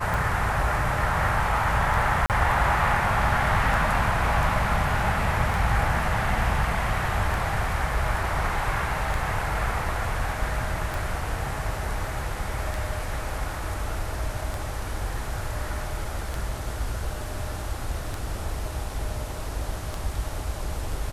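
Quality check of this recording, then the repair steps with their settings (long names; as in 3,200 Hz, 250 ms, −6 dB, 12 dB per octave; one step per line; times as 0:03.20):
scratch tick 33 1/3 rpm
0:02.26–0:02.30: drop-out 38 ms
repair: click removal
repair the gap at 0:02.26, 38 ms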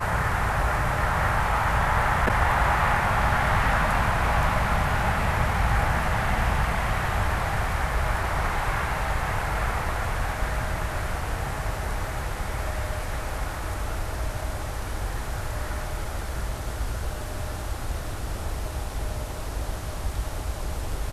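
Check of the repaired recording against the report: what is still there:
none of them is left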